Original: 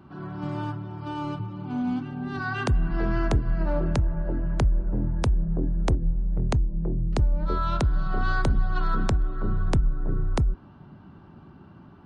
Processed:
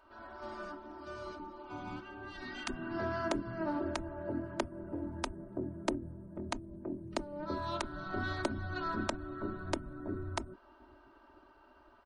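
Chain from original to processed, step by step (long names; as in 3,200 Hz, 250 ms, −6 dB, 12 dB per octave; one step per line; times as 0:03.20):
gate on every frequency bin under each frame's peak −10 dB weak
comb filter 3.2 ms, depth 78%
level −6 dB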